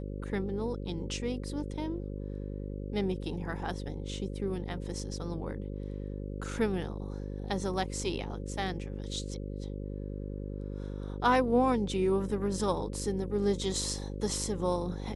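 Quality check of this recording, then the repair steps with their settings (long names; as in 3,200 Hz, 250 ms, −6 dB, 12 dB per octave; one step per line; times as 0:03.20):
mains buzz 50 Hz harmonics 11 −38 dBFS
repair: hum removal 50 Hz, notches 11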